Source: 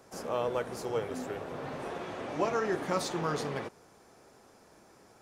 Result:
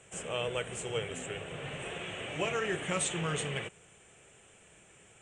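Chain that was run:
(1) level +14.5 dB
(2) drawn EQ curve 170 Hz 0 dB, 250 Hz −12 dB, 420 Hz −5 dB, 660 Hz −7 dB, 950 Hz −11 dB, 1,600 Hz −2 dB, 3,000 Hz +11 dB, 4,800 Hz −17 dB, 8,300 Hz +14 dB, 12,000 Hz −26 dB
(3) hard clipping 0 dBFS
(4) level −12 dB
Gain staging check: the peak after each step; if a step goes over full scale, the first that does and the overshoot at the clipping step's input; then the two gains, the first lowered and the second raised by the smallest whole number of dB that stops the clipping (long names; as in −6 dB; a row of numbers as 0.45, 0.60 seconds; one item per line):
−2.5, −6.0, −6.0, −18.0 dBFS
no step passes full scale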